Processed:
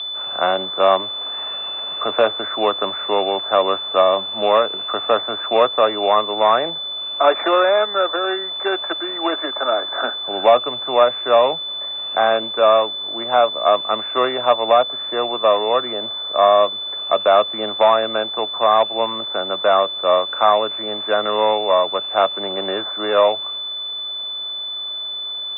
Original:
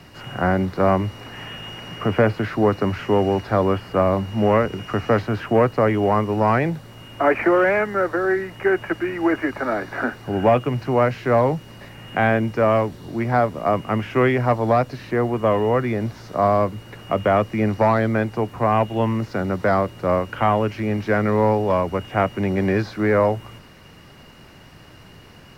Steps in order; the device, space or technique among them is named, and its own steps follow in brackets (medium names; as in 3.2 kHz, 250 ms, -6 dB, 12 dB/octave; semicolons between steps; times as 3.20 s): toy sound module (decimation joined by straight lines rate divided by 8×; class-D stage that switches slowly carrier 3.5 kHz; cabinet simulation 580–3600 Hz, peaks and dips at 620 Hz +6 dB, 1.2 kHz +7 dB, 2.7 kHz +6 dB); trim +3.5 dB